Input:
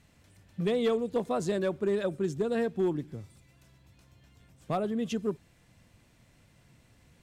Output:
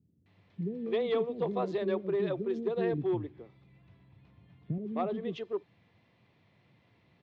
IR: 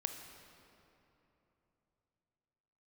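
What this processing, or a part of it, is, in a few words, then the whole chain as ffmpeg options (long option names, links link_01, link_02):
guitar cabinet: -filter_complex "[0:a]highpass=100,highpass=91,equalizer=frequency=140:width_type=q:width=4:gain=-4,equalizer=frequency=240:width_type=q:width=4:gain=-4,equalizer=frequency=380:width_type=q:width=4:gain=3,equalizer=frequency=590:width_type=q:width=4:gain=-3,equalizer=frequency=1500:width_type=q:width=4:gain=-8,equalizer=frequency=2800:width_type=q:width=4:gain=-4,lowpass=frequency=3600:width=0.5412,lowpass=frequency=3600:width=1.3066,asettb=1/sr,asplit=3[link_01][link_02][link_03];[link_01]atrim=end=2.934[link_04];[link_02]atrim=start=2.93:end=4.78,asetpts=PTS-STARTPTS,afade=type=in:duration=0.004:curve=qsin,afade=type=out:start_time=1.846:duration=0.004:curve=qsin,bass=frequency=250:gain=8,treble=frequency=4000:gain=-9[link_05];[link_03]atrim=start=4.776[link_06];[link_04][link_05]acrossfade=duration=0.004:curve1=hsin:curve2=qsin[link_07];[link_07][link_06]acrossfade=duration=0.004:curve1=qsin:curve2=hsin,acrossover=split=330[link_08][link_09];[link_09]adelay=260[link_10];[link_08][link_10]amix=inputs=2:normalize=0"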